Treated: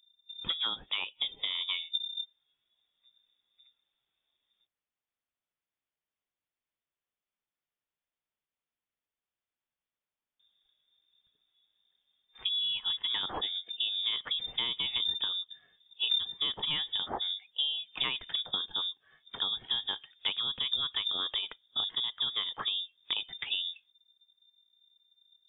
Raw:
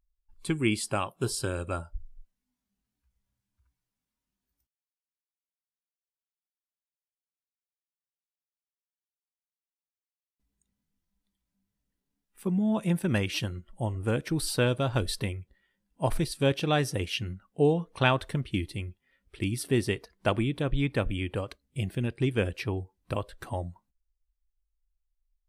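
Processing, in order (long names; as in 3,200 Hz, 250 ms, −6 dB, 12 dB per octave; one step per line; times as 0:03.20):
0:15.00–0:17.00: low-shelf EQ 75 Hz +11 dB
downward compressor 6 to 1, threshold −37 dBFS, peak gain reduction 20.5 dB
voice inversion scrambler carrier 3,600 Hz
level +6 dB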